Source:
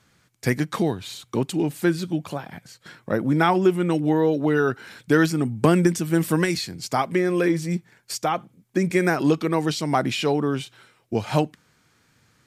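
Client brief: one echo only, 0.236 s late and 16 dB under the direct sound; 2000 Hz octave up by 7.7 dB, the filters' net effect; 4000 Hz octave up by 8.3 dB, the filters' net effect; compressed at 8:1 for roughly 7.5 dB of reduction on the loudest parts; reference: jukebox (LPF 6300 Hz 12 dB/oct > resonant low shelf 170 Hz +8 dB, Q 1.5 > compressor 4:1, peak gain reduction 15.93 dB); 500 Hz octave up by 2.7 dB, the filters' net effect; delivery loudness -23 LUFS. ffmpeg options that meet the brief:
-af "equalizer=f=500:t=o:g=4.5,equalizer=f=2k:t=o:g=8,equalizer=f=4k:t=o:g=8.5,acompressor=threshold=-17dB:ratio=8,lowpass=6.3k,lowshelf=f=170:t=q:w=1.5:g=8,aecho=1:1:236:0.158,acompressor=threshold=-32dB:ratio=4,volume=11dB"

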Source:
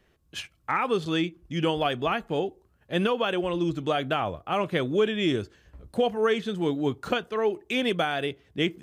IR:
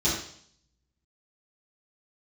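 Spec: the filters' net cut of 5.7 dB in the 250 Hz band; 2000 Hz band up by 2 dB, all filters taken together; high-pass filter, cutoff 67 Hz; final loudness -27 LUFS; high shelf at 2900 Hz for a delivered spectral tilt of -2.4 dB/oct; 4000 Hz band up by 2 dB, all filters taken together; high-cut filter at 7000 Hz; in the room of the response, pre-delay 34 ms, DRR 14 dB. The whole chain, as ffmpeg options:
-filter_complex "[0:a]highpass=67,lowpass=7k,equalizer=f=250:t=o:g=-8.5,equalizer=f=2k:t=o:g=3.5,highshelf=f=2.9k:g=-5.5,equalizer=f=4k:t=o:g=5.5,asplit=2[a][b];[1:a]atrim=start_sample=2205,adelay=34[c];[b][c]afir=irnorm=-1:irlink=0,volume=-25.5dB[d];[a][d]amix=inputs=2:normalize=0,volume=1dB"

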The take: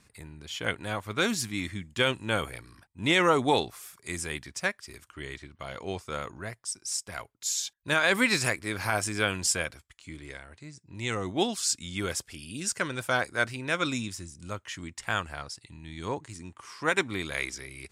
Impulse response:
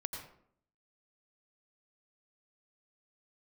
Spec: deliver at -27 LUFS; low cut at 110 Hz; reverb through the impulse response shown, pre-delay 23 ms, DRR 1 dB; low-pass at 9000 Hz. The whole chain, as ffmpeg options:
-filter_complex "[0:a]highpass=110,lowpass=9k,asplit=2[a][b];[1:a]atrim=start_sample=2205,adelay=23[c];[b][c]afir=irnorm=-1:irlink=0,volume=-1dB[d];[a][d]amix=inputs=2:normalize=0,volume=0.5dB"

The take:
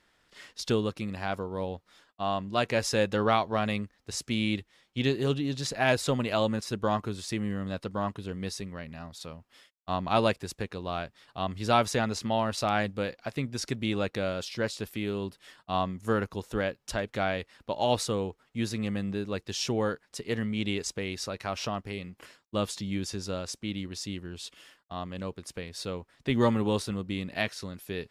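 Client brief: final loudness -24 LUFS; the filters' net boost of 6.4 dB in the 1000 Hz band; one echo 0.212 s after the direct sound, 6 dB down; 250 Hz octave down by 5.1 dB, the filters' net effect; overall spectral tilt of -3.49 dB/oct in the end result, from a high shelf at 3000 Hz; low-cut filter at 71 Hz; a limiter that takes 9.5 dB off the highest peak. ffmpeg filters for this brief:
-af "highpass=71,equalizer=f=250:t=o:g=-7,equalizer=f=1k:t=o:g=8.5,highshelf=f=3k:g=5,alimiter=limit=-13.5dB:level=0:latency=1,aecho=1:1:212:0.501,volume=5.5dB"

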